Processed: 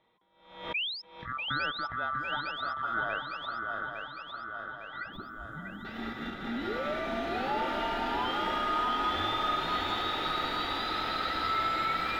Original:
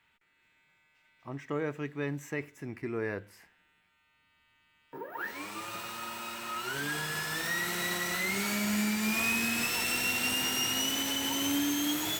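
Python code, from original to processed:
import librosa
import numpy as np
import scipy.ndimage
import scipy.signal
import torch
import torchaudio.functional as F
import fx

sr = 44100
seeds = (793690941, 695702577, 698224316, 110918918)

p1 = fx.band_swap(x, sr, width_hz=1000)
p2 = fx.ellip_bandstop(p1, sr, low_hz=310.0, high_hz=7500.0, order=3, stop_db=40, at=(5.12, 5.85))
p3 = fx.level_steps(p2, sr, step_db=20)
p4 = p2 + (p3 * 10.0 ** (-1.5 / 20.0))
p5 = fx.spec_paint(p4, sr, seeds[0], shape='rise', start_s=0.74, length_s=0.28, low_hz=2300.0, high_hz=5400.0, level_db=-25.0)
p6 = fx.air_absorb(p5, sr, metres=380.0)
p7 = fx.echo_swing(p6, sr, ms=856, ratio=3, feedback_pct=60, wet_db=-5.0)
y = fx.pre_swell(p7, sr, db_per_s=90.0)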